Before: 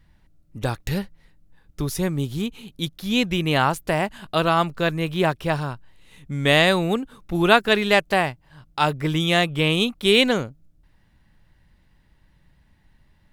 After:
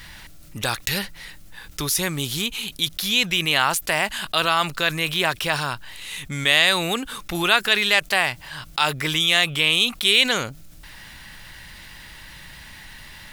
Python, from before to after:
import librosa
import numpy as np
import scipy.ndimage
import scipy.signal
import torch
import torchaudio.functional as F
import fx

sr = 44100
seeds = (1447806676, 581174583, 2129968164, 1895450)

y = fx.tilt_shelf(x, sr, db=-10.0, hz=940.0)
y = fx.env_flatten(y, sr, amount_pct=50)
y = F.gain(torch.from_numpy(y), -6.0).numpy()